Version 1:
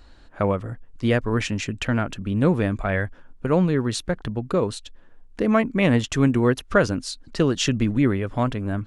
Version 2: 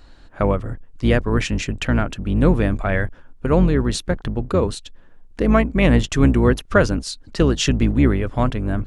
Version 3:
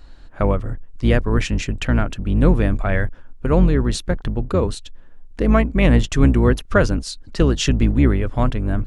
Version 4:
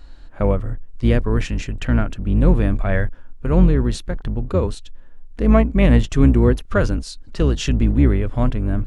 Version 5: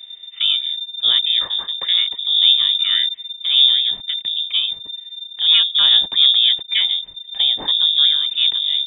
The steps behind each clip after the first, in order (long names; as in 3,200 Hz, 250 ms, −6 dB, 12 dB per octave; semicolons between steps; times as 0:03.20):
sub-octave generator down 2 octaves, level −1 dB; level +2.5 dB
low-shelf EQ 68 Hz +7 dB; level −1 dB
harmonic and percussive parts rebalanced percussive −8 dB; level +2.5 dB
voice inversion scrambler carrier 3,600 Hz; level −2 dB